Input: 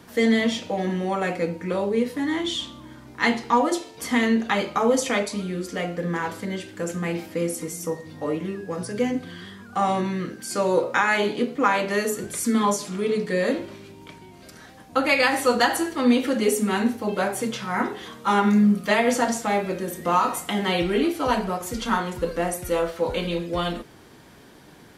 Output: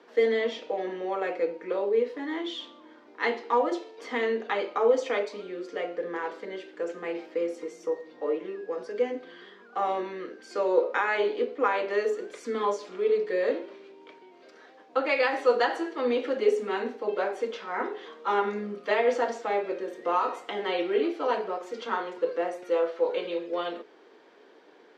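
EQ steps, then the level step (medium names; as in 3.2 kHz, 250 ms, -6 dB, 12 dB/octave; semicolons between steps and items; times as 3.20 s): high-pass 320 Hz 24 dB/octave; distance through air 180 m; peaking EQ 450 Hz +7 dB 0.48 oct; -5.0 dB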